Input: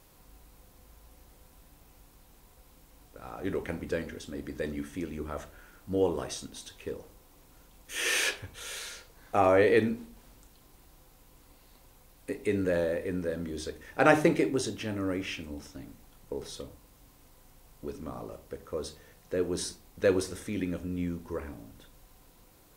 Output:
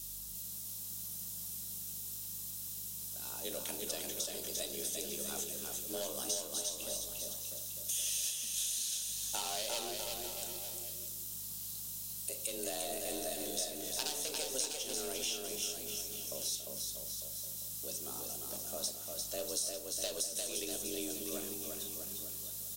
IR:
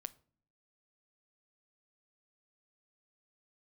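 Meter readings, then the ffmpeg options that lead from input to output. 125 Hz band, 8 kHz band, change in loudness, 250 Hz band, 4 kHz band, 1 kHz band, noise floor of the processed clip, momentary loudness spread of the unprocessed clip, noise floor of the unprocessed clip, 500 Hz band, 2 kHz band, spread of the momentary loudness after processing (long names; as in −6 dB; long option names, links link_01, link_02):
−15.5 dB, +8.0 dB, −6.0 dB, −15.5 dB, +2.0 dB, −13.5 dB, −44 dBFS, 20 LU, −59 dBFS, −13.0 dB, −15.0 dB, 6 LU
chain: -filter_complex "[0:a]equalizer=frequency=4400:width=7.1:gain=-6,afreqshift=130,aeval=exprs='0.473*(cos(1*acos(clip(val(0)/0.473,-1,1)))-cos(1*PI/2))+0.133*(cos(2*acos(clip(val(0)/0.473,-1,1)))-cos(2*PI/2))':channel_layout=same,asoftclip=type=hard:threshold=-20.5dB,aexciter=amount=15:drive=7.6:freq=3200,aeval=exprs='val(0)+0.00447*(sin(2*PI*50*n/s)+sin(2*PI*2*50*n/s)/2+sin(2*PI*3*50*n/s)/3+sin(2*PI*4*50*n/s)/4+sin(2*PI*5*50*n/s)/5)':channel_layout=same,acompressor=threshold=-26dB:ratio=6,acrusher=bits=7:mix=0:aa=0.5,aecho=1:1:350|647.5|900.4|1115|1298:0.631|0.398|0.251|0.158|0.1[link_01];[1:a]atrim=start_sample=2205[link_02];[link_01][link_02]afir=irnorm=-1:irlink=0,volume=-6dB"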